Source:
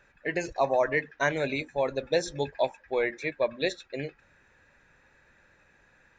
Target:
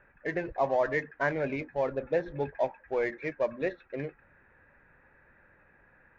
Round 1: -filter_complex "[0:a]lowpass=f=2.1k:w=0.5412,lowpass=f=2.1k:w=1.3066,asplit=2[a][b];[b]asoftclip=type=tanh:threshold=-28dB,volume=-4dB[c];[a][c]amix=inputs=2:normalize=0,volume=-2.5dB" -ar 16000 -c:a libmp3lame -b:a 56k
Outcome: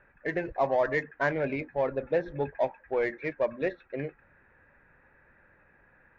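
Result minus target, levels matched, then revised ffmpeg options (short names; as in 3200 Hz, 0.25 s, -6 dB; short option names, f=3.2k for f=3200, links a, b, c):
soft clip: distortion -5 dB
-filter_complex "[0:a]lowpass=f=2.1k:w=0.5412,lowpass=f=2.1k:w=1.3066,asplit=2[a][b];[b]asoftclip=type=tanh:threshold=-37dB,volume=-4dB[c];[a][c]amix=inputs=2:normalize=0,volume=-2.5dB" -ar 16000 -c:a libmp3lame -b:a 56k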